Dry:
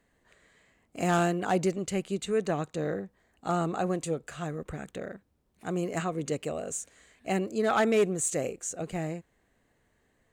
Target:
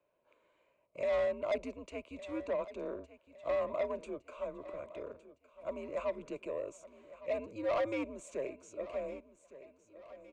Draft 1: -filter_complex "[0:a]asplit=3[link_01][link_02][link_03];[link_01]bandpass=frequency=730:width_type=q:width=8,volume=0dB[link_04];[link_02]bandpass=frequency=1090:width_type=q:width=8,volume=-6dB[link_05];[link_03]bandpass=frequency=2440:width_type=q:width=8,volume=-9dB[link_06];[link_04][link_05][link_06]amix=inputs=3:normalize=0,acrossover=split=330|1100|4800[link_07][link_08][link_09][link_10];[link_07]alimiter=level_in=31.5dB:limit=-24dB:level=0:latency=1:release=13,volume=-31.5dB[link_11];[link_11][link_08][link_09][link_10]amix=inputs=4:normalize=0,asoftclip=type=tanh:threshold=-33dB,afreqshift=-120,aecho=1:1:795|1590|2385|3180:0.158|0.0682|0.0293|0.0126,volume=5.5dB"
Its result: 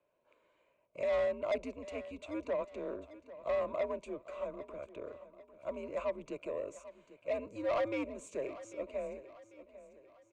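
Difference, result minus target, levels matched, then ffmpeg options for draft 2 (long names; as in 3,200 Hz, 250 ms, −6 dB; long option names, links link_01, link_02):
echo 366 ms early
-filter_complex "[0:a]asplit=3[link_01][link_02][link_03];[link_01]bandpass=frequency=730:width_type=q:width=8,volume=0dB[link_04];[link_02]bandpass=frequency=1090:width_type=q:width=8,volume=-6dB[link_05];[link_03]bandpass=frequency=2440:width_type=q:width=8,volume=-9dB[link_06];[link_04][link_05][link_06]amix=inputs=3:normalize=0,acrossover=split=330|1100|4800[link_07][link_08][link_09][link_10];[link_07]alimiter=level_in=31.5dB:limit=-24dB:level=0:latency=1:release=13,volume=-31.5dB[link_11];[link_11][link_08][link_09][link_10]amix=inputs=4:normalize=0,asoftclip=type=tanh:threshold=-33dB,afreqshift=-120,aecho=1:1:1161|2322|3483|4644:0.158|0.0682|0.0293|0.0126,volume=5.5dB"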